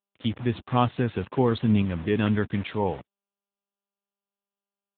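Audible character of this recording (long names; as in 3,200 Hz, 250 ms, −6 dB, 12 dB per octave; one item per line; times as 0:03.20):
a quantiser's noise floor 6 bits, dither none
tremolo saw up 1.1 Hz, depth 35%
AMR narrowband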